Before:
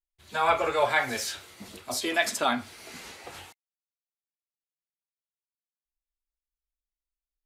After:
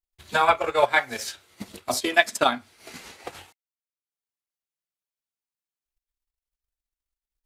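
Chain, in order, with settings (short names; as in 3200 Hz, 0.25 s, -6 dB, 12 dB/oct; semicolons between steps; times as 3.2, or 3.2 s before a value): transient shaper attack +10 dB, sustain -10 dB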